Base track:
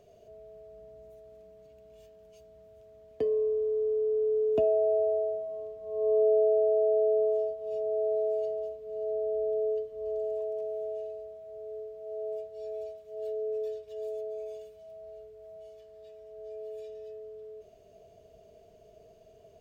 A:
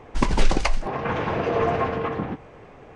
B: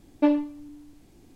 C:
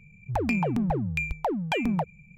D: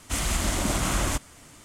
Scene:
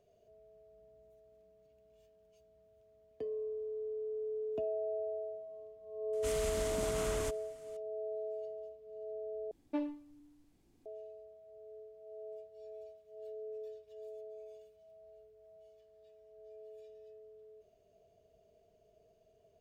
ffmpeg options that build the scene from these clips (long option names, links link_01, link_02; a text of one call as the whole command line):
ffmpeg -i bed.wav -i cue0.wav -i cue1.wav -i cue2.wav -i cue3.wav -filter_complex "[0:a]volume=-11.5dB,asplit=2[link_01][link_02];[link_01]atrim=end=9.514[link_03];[2:a]atrim=end=1.35,asetpts=PTS-STARTPTS,volume=-15.5dB[link_04];[link_02]atrim=start=10.856[link_05];[4:a]atrim=end=1.64,asetpts=PTS-STARTPTS,volume=-13.5dB,afade=type=in:duration=0.004:curve=hsin,afade=type=out:start_time=1.636:duration=0.004:curve=hsin,adelay=6130[link_06];[link_03][link_04]acrossfade=duration=0.004:curve1=hsin:curve2=hsin[link_07];[link_07][link_05]acrossfade=duration=0.004:curve1=hsin:curve2=hsin[link_08];[link_08][link_06]amix=inputs=2:normalize=0" out.wav